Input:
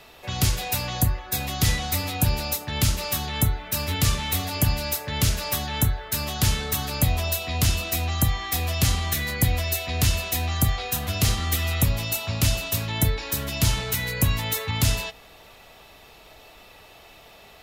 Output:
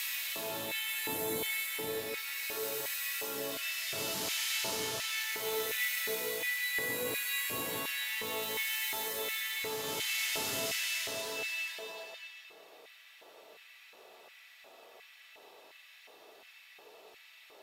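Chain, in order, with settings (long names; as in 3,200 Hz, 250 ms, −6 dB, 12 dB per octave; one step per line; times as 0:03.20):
extreme stretch with random phases 5×, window 0.50 s, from 0:12.76
auto-filter high-pass square 1.4 Hz 410–2,000 Hz
level −8.5 dB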